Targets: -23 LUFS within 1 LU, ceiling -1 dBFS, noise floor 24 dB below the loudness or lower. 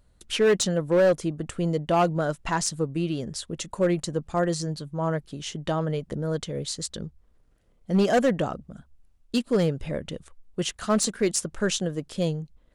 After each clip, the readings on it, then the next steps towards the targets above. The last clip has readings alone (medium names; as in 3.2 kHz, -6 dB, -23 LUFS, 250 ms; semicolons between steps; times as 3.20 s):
clipped samples 1.0%; clipping level -15.0 dBFS; loudness -26.5 LUFS; peak level -15.0 dBFS; loudness target -23.0 LUFS
-> clip repair -15 dBFS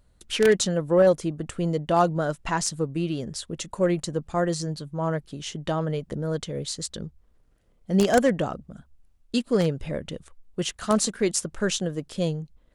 clipped samples 0.0%; loudness -26.0 LUFS; peak level -6.0 dBFS; loudness target -23.0 LUFS
-> trim +3 dB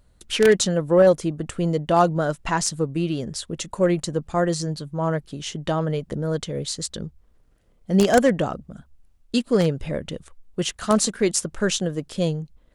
loudness -23.0 LUFS; peak level -3.0 dBFS; noise floor -58 dBFS